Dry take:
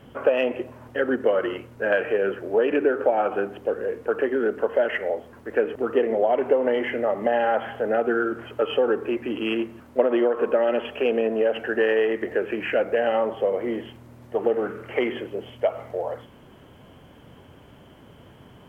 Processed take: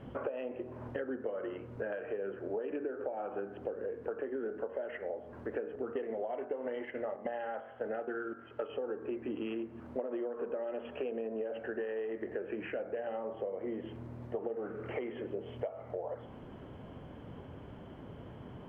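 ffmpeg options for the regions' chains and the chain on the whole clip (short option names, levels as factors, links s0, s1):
-filter_complex "[0:a]asettb=1/sr,asplit=3[s0][s1][s2];[s0]atrim=end=5.934[s3];[s1]atrim=start=5.93:end=8.69,asetpts=PTS-STARTPTS,afade=t=in:d=0.004:c=qsin,afade=t=out:st=2.756:d=0.004:c=qsin,agate=range=0.251:threshold=0.0398:ratio=16:release=100:detection=peak,equalizer=f=2800:t=o:w=2.8:g=7.5,bandreject=f=2400:w=27[s4];[s2]atrim=start=8.686[s5];[s3][s4]acrossfade=d=0.004:c1=hsin:c2=qsin[s6];[s6][s5]acrossfade=d=0.004:c1=qsin:c2=hsin,bandreject=f=47.01:t=h:w=4,bandreject=f=94.02:t=h:w=4,bandreject=f=141.03:t=h:w=4,bandreject=f=188.04:t=h:w=4,bandreject=f=235.05:t=h:w=4,bandreject=f=282.06:t=h:w=4,bandreject=f=329.07:t=h:w=4,bandreject=f=376.08:t=h:w=4,bandreject=f=423.09:t=h:w=4,bandreject=f=470.1:t=h:w=4,bandreject=f=517.11:t=h:w=4,bandreject=f=564.12:t=h:w=4,bandreject=f=611.13:t=h:w=4,bandreject=f=658.14:t=h:w=4,bandreject=f=705.15:t=h:w=4,bandreject=f=752.16:t=h:w=4,bandreject=f=799.17:t=h:w=4,bandreject=f=846.18:t=h:w=4,bandreject=f=893.19:t=h:w=4,bandreject=f=940.2:t=h:w=4,bandreject=f=987.21:t=h:w=4,bandreject=f=1034.22:t=h:w=4,bandreject=f=1081.23:t=h:w=4,bandreject=f=1128.24:t=h:w=4,bandreject=f=1175.25:t=h:w=4,bandreject=f=1222.26:t=h:w=4,bandreject=f=1269.27:t=h:w=4,bandreject=f=1316.28:t=h:w=4,bandreject=f=1363.29:t=h:w=4,bandreject=f=1410.3:t=h:w=4,bandreject=f=1457.31:t=h:w=4,bandreject=f=1504.32:t=h:w=4,bandreject=f=1551.33:t=h:w=4,bandreject=f=1598.34:t=h:w=4,bandreject=f=1645.35:t=h:w=4,bandreject=f=1692.36:t=h:w=4,bandreject=f=1739.37:t=h:w=4,acompressor=threshold=0.0158:ratio=8,lowpass=f=1000:p=1,volume=1.26"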